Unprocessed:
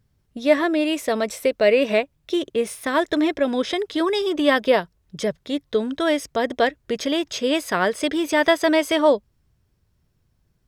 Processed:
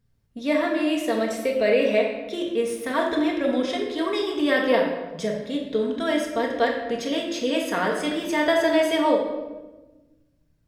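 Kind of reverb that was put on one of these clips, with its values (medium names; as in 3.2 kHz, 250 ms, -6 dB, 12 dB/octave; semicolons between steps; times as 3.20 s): simulated room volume 670 m³, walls mixed, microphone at 1.7 m; trim -6.5 dB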